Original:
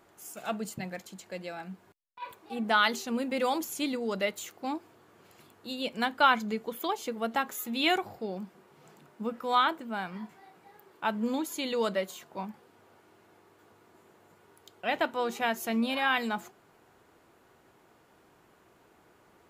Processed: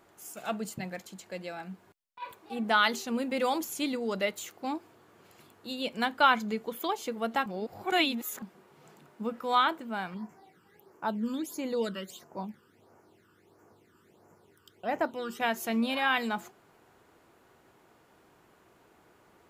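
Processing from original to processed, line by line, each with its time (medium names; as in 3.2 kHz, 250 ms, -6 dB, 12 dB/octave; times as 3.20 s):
7.46–8.42 s: reverse
10.14–15.40 s: phase shifter stages 12, 1.5 Hz, lowest notch 670–3700 Hz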